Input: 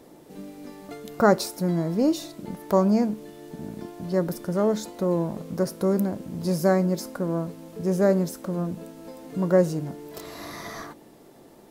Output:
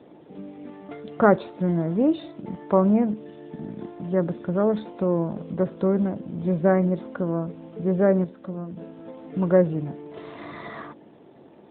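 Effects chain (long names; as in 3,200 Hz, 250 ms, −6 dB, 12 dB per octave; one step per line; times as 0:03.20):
0:08.24–0:08.77: tuned comb filter 190 Hz, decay 0.6 s, harmonics all, mix 50%
level +1.5 dB
AMR narrowband 12.2 kbit/s 8,000 Hz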